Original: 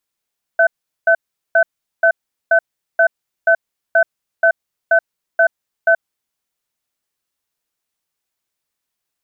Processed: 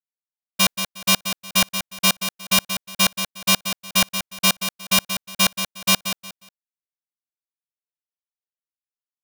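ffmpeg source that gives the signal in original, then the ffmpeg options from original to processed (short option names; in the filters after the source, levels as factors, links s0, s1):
-f lavfi -i "aevalsrc='0.282*(sin(2*PI*665*t)+sin(2*PI*1520*t))*clip(min(mod(t,0.48),0.08-mod(t,0.48))/0.005,0,1)':d=5.65:s=44100"
-filter_complex "[0:a]aeval=exprs='(mod(2.99*val(0)+1,2)-1)/2.99':c=same,agate=range=0.0224:threshold=0.178:ratio=3:detection=peak,asplit=2[s0][s1];[s1]aecho=0:1:180|360|540:0.355|0.0887|0.0222[s2];[s0][s2]amix=inputs=2:normalize=0"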